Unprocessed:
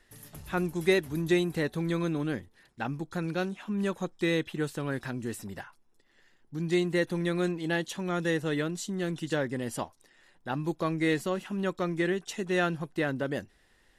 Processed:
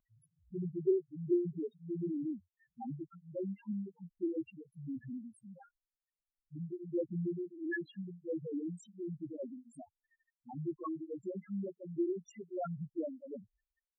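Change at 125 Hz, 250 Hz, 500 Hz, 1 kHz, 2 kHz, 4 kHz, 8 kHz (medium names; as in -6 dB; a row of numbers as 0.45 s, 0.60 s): -11.0 dB, -8.0 dB, -8.5 dB, -14.5 dB, -17.5 dB, under -25 dB, under -20 dB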